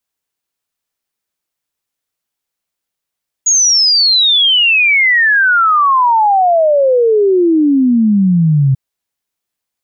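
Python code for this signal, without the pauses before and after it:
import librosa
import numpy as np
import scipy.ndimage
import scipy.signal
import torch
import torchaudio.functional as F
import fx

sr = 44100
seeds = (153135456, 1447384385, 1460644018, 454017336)

y = fx.ess(sr, length_s=5.29, from_hz=6800.0, to_hz=130.0, level_db=-7.0)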